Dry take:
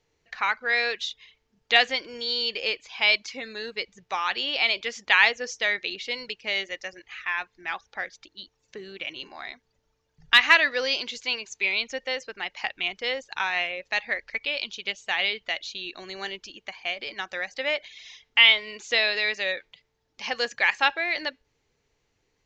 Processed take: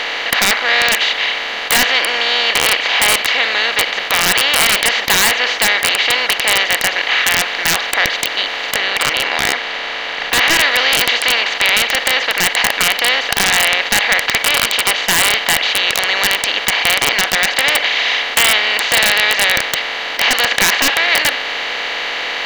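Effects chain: per-bin compression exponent 0.2; wrapped overs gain 0.5 dB; 8.77–10.59 high shelf 7100 Hz -6.5 dB; gain -1 dB

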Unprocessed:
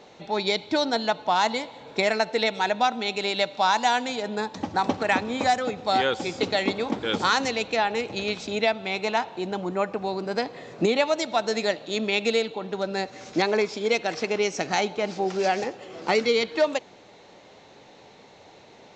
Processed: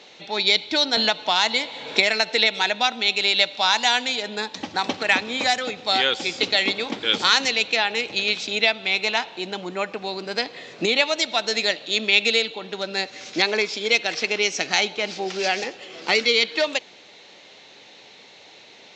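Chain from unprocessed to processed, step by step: weighting filter D; 0.97–2.63 three-band squash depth 70%; gain -1.5 dB

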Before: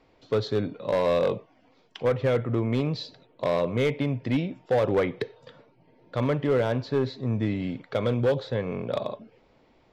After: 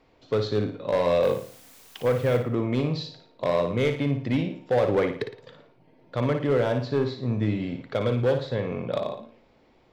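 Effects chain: 1.22–2.36 added noise white -53 dBFS; flutter echo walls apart 9.7 m, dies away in 0.45 s

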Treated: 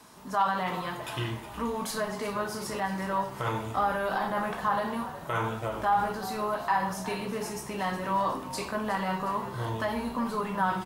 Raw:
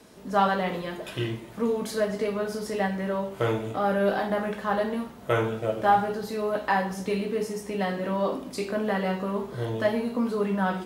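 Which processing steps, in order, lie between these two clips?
high shelf 3900 Hz +8 dB; de-hum 98.93 Hz, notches 5; limiter -19 dBFS, peak gain reduction 9.5 dB; graphic EQ 125/500/1000 Hz +3/-6/+12 dB; on a send: frequency-shifting echo 0.363 s, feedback 57%, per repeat -56 Hz, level -14 dB; on the sum: gain -4 dB

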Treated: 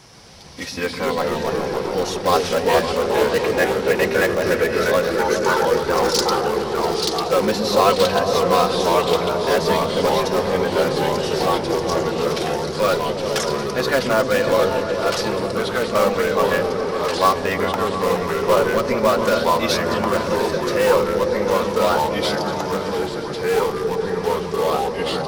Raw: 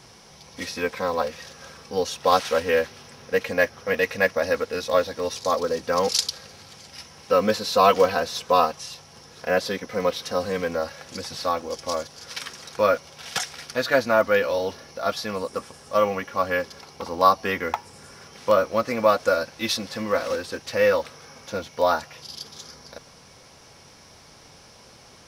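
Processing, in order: in parallel at -10 dB: wrapped overs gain 15 dB; 5.17–5.65 on the sum: frequency shift +370 Hz; echoes that change speed 0.127 s, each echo -2 st, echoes 3; repeats that get brighter 0.139 s, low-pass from 200 Hz, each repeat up 1 oct, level 0 dB

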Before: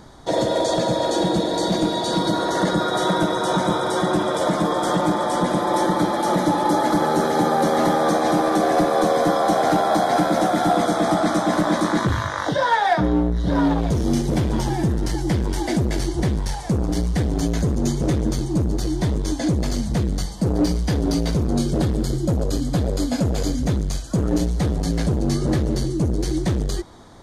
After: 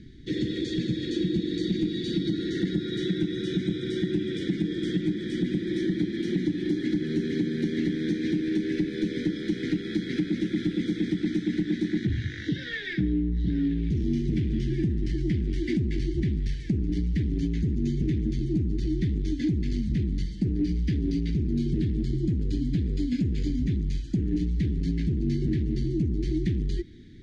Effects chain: inverse Chebyshev band-stop 590–1200 Hz, stop band 50 dB; compressor, threshold -22 dBFS, peak gain reduction 7 dB; LPF 2600 Hz 12 dB/oct

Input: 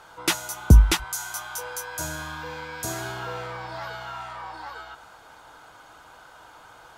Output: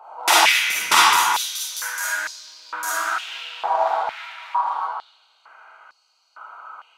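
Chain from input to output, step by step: Wiener smoothing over 25 samples; digital reverb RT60 1.9 s, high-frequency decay 0.75×, pre-delay 5 ms, DRR -9 dB; stepped high-pass 2.2 Hz 790–4800 Hz; gain +2.5 dB

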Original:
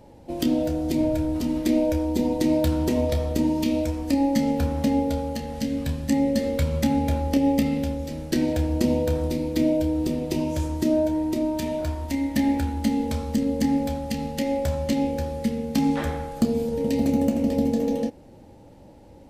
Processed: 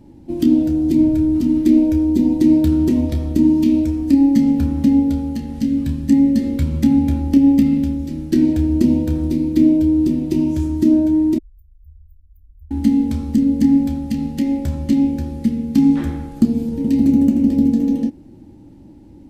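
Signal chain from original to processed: 11.38–12.71 inverse Chebyshev band-stop 190–7400 Hz, stop band 70 dB; resonant low shelf 400 Hz +7.5 dB, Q 3; gain -3 dB

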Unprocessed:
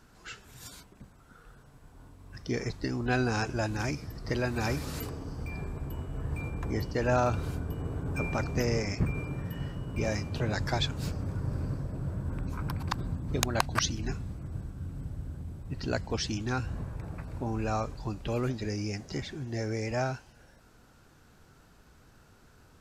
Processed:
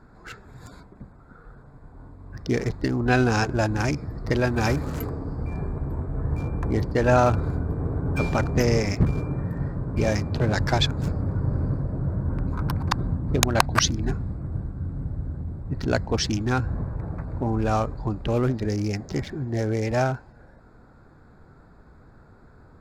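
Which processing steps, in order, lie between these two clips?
Wiener smoothing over 15 samples; gain +8 dB

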